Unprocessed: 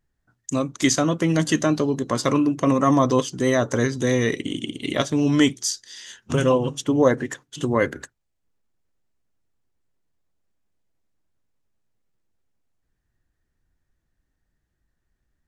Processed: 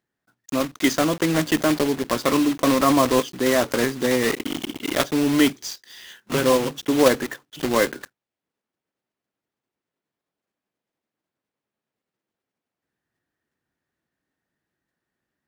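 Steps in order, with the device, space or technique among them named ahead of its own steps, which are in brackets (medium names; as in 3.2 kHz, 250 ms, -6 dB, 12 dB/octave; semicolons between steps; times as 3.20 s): early digital voice recorder (band-pass 210–3700 Hz; block-companded coder 3-bit); trim +1 dB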